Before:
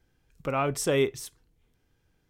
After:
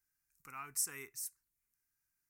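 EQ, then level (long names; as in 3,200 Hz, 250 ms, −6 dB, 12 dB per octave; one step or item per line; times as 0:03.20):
first-order pre-emphasis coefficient 0.9
low-shelf EQ 420 Hz −9 dB
phaser with its sweep stopped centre 1,400 Hz, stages 4
0.0 dB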